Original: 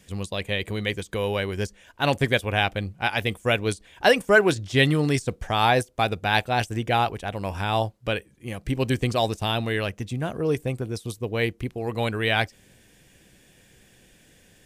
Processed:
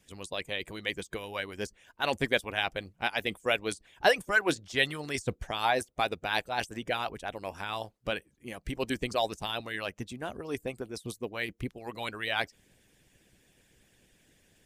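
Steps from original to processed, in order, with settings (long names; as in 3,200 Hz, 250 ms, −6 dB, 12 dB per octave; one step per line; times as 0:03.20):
harmonic and percussive parts rebalanced harmonic −16 dB
level −4 dB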